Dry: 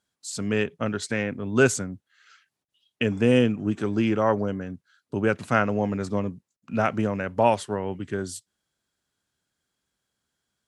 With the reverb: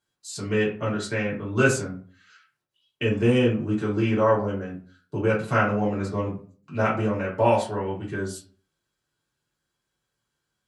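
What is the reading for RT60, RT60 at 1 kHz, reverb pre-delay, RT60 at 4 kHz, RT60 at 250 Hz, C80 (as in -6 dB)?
0.40 s, 0.40 s, 3 ms, 0.25 s, 0.50 s, 13.5 dB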